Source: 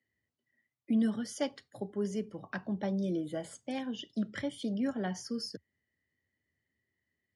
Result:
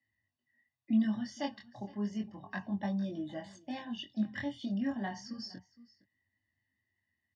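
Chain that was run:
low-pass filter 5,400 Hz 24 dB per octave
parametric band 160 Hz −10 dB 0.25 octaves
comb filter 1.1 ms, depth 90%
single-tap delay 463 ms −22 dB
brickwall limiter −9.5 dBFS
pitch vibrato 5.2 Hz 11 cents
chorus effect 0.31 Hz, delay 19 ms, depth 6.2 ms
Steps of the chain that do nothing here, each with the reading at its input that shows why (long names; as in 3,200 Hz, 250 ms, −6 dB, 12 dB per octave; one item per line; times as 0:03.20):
brickwall limiter −9.5 dBFS: peak of its input −19.5 dBFS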